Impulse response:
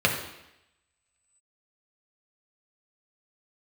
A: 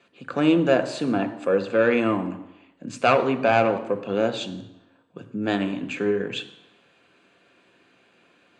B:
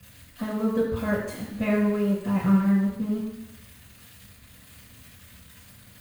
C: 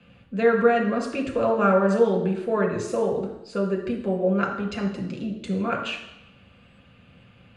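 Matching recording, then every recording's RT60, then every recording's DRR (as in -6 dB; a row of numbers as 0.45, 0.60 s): C; 0.85, 0.85, 0.85 s; 8.5, -10.0, 0.0 dB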